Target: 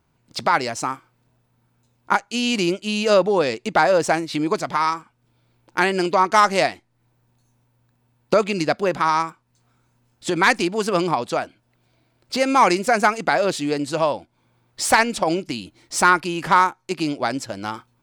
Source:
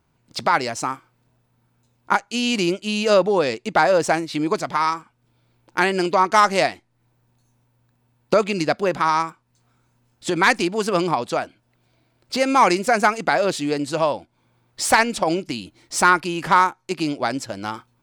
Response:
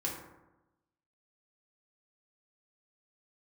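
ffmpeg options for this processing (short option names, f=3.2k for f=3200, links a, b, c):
-filter_complex "[0:a]asettb=1/sr,asplit=3[a][b][c];[a]atrim=end=3.414[d];[b]atrim=start=3.41:end=4.89,asetpts=PTS-STARTPTS,afade=t=in:d=0.004:c=qsin,afade=t=out:st=1.476:d=0.004:c=qsin,acompressor=mode=upward:threshold=-21dB:ratio=2.5[e];[c]atrim=start=4.886[f];[d][e]acrossfade=d=0.004:c1=hsin:c2=qsin[g];[g][f]acrossfade=d=0.004:c1=qsin:c2=hsin"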